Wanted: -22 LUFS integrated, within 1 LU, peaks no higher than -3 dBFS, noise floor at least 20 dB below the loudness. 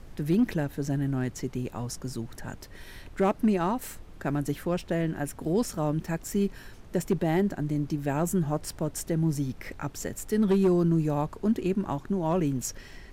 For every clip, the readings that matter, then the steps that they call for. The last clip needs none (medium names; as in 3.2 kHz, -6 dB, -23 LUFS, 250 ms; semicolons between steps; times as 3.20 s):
clipped samples 0.3%; clipping level -17.0 dBFS; noise floor -47 dBFS; noise floor target -49 dBFS; loudness -28.5 LUFS; peak level -17.0 dBFS; loudness target -22.0 LUFS
-> clip repair -17 dBFS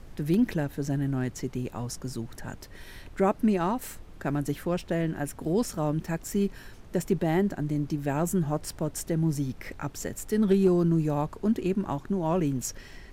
clipped samples 0.0%; noise floor -47 dBFS; noise floor target -49 dBFS
-> noise print and reduce 6 dB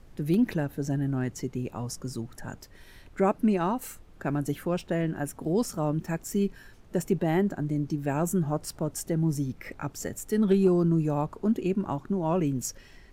noise floor -52 dBFS; loudness -28.5 LUFS; peak level -12.0 dBFS; loudness target -22.0 LUFS
-> trim +6.5 dB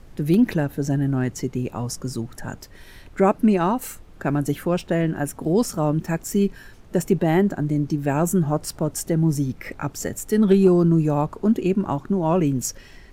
loudness -22.0 LUFS; peak level -5.5 dBFS; noise floor -46 dBFS